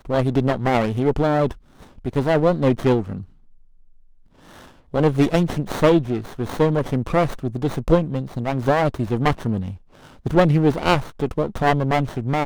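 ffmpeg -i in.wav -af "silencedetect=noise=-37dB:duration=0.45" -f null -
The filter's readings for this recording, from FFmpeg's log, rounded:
silence_start: 3.24
silence_end: 4.53 | silence_duration: 1.28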